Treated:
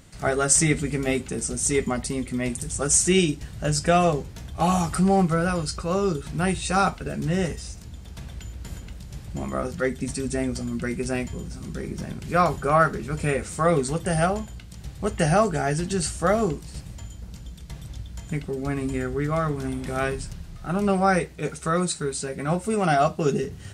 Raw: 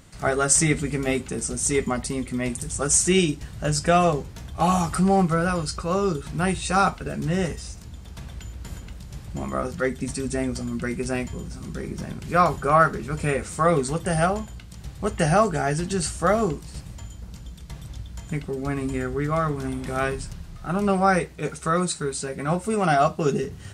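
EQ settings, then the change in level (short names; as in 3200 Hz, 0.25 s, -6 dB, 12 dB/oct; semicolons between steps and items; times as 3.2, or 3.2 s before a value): bell 1100 Hz -3 dB 0.77 oct; 0.0 dB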